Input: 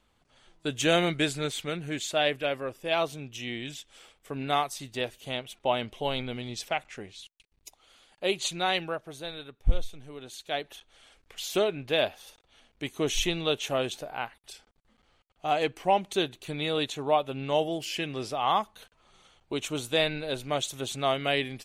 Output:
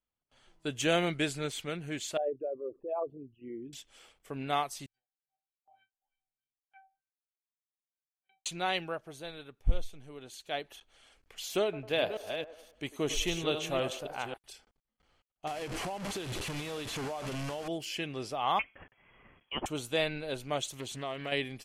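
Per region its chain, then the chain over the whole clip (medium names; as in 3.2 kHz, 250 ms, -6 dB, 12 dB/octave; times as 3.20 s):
2.17–3.73 s: resonances exaggerated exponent 3 + four-pole ladder low-pass 1.3 kHz, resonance 60% + peaking EQ 360 Hz +11 dB 1.4 oct
4.86–8.46 s: amplifier tone stack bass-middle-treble 5-5-5 + feedback comb 780 Hz, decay 0.36 s, mix 100% + LFO low-pass sine 3.3 Hz 620–1800 Hz
11.63–14.37 s: chunks repeated in reverse 271 ms, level -7 dB + feedback echo behind a band-pass 99 ms, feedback 46%, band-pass 730 Hz, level -12 dB
15.47–17.68 s: one-bit delta coder 64 kbps, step -25.5 dBFS + compression 12:1, threshold -29 dBFS + treble shelf 5.6 kHz -6 dB
18.59–19.66 s: tilt shelf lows -8.5 dB, about 650 Hz + frequency inversion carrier 3.3 kHz
20.67–21.32 s: compression 2.5:1, threshold -32 dBFS + loudspeaker Doppler distortion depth 0.3 ms
whole clip: band-stop 3.7 kHz, Q 16; gate with hold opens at -55 dBFS; trim -4 dB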